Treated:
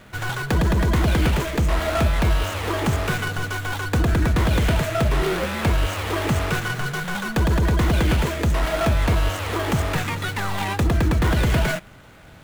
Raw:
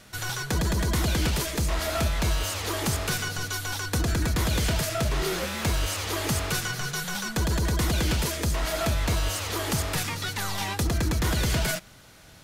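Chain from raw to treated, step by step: median filter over 9 samples; trim +6.5 dB

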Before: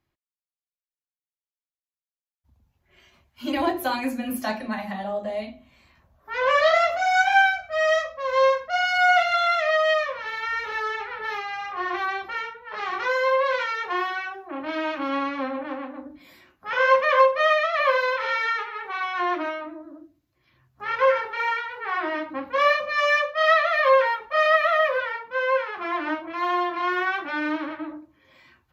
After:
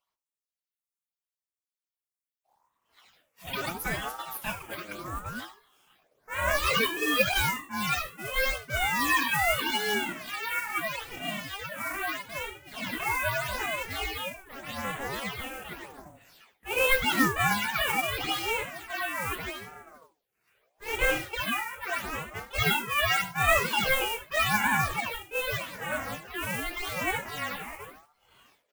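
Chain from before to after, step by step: octave divider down 1 oct, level +3 dB; tilt shelf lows -9 dB, about 700 Hz; modulation noise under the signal 11 dB; phase shifter stages 8, 0.82 Hz, lowest notch 120–4900 Hz; delay 75 ms -16.5 dB; ring modulator with a swept carrier 730 Hz, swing 45%, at 0.71 Hz; trim -4.5 dB

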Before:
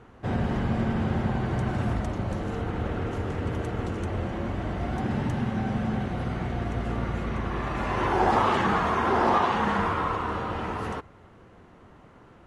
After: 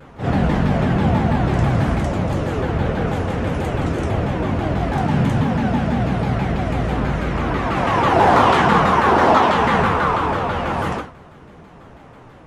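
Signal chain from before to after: in parallel at -11 dB: overload inside the chain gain 20.5 dB; on the sum: reverse echo 50 ms -6 dB; gated-style reverb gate 140 ms falling, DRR 1 dB; vibrato with a chosen wave saw down 6.1 Hz, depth 250 cents; trim +4 dB

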